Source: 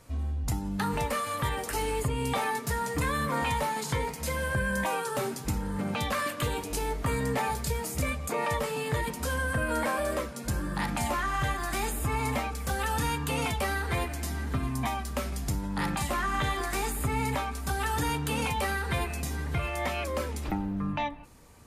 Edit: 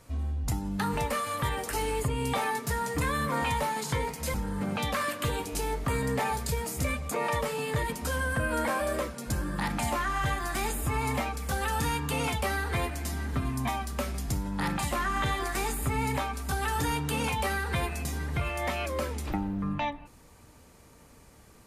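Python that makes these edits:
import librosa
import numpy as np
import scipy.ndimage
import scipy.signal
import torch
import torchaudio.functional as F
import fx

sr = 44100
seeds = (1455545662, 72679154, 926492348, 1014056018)

y = fx.edit(x, sr, fx.cut(start_s=4.34, length_s=1.18), tone=tone)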